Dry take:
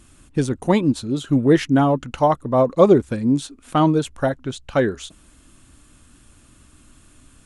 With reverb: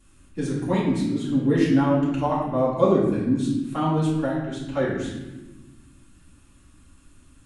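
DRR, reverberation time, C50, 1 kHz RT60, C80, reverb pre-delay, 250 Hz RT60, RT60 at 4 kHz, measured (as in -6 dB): -8.5 dB, 1.2 s, 2.0 dB, 1.0 s, 4.5 dB, 3 ms, 2.0 s, 0.85 s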